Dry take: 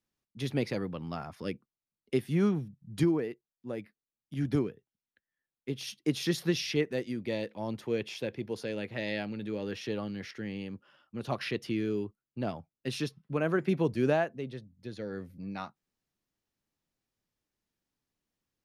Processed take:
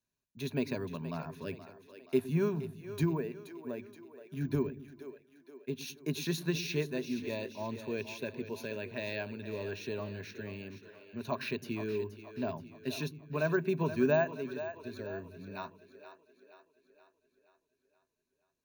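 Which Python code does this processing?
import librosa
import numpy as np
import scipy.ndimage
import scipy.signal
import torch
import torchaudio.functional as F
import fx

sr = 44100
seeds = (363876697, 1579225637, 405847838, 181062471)

y = fx.ripple_eq(x, sr, per_octave=1.5, db=11)
y = fx.echo_split(y, sr, split_hz=320.0, low_ms=106, high_ms=475, feedback_pct=52, wet_db=-11.5)
y = np.repeat(y[::2], 2)[:len(y)]
y = fx.dynamic_eq(y, sr, hz=980.0, q=3.2, threshold_db=-52.0, ratio=4.0, max_db=4)
y = y * 10.0 ** (-4.5 / 20.0)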